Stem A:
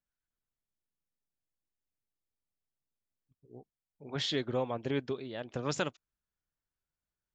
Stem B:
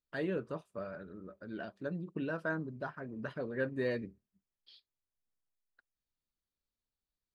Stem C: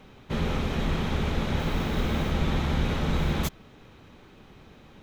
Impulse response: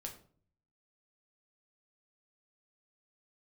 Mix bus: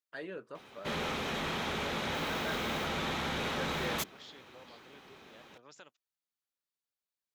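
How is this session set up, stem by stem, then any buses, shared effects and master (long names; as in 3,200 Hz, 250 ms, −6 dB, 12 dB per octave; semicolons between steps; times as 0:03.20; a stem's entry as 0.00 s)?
−12.5 dB, 0.00 s, no send, downward compressor 2 to 1, threshold −39 dBFS, peak gain reduction 7 dB
−1.5 dB, 0.00 s, no send, no processing
+1.5 dB, 0.55 s, no send, no processing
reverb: not used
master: high-pass filter 680 Hz 6 dB per octave; soft clipping −26.5 dBFS, distortion −19 dB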